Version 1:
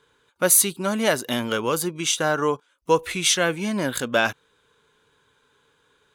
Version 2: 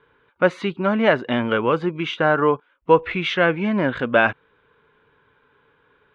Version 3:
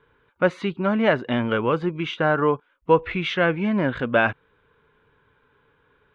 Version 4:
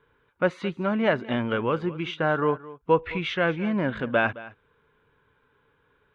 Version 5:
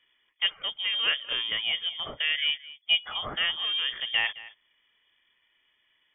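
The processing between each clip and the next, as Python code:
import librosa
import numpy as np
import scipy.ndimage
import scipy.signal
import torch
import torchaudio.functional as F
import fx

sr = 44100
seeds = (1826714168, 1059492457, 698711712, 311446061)

y1 = scipy.signal.sosfilt(scipy.signal.butter(4, 2600.0, 'lowpass', fs=sr, output='sos'), x)
y1 = y1 * librosa.db_to_amplitude(4.5)
y2 = fx.low_shelf(y1, sr, hz=120.0, db=9.0)
y2 = y2 * librosa.db_to_amplitude(-3.0)
y3 = y2 + 10.0 ** (-18.0 / 20.0) * np.pad(y2, (int(216 * sr / 1000.0), 0))[:len(y2)]
y3 = y3 * librosa.db_to_amplitude(-3.5)
y4 = fx.freq_invert(y3, sr, carrier_hz=3400)
y4 = y4 * librosa.db_to_amplitude(-4.0)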